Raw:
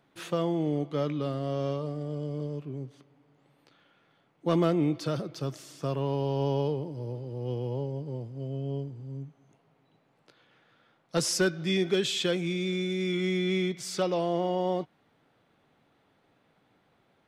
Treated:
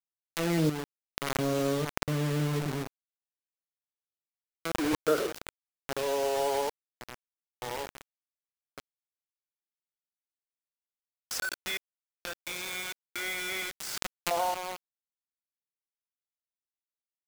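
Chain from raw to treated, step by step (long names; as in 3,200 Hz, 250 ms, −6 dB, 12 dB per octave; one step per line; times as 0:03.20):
tuned comb filter 210 Hz, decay 0.28 s, harmonics all, mix 30%
feedback delay network reverb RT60 0.35 s, low-frequency decay 0.75×, high-frequency decay 0.25×, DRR 11.5 dB
dynamic equaliser 450 Hz, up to +6 dB, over −48 dBFS, Q 5.7
volume swells 378 ms
parametric band 1,500 Hz +14.5 dB 0.45 octaves
delay with a low-pass on its return 190 ms, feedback 38%, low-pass 570 Hz, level −15 dB
high-pass filter sweep 160 Hz → 800 Hz, 0:03.20–0:06.84
gate pattern ".xx...xx.xxxx.x." 65 BPM −12 dB
bit reduction 6 bits
background raised ahead of every attack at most 23 dB per second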